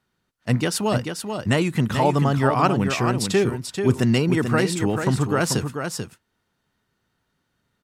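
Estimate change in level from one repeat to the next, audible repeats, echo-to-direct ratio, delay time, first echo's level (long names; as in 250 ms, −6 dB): repeats not evenly spaced, 1, −6.5 dB, 438 ms, −6.5 dB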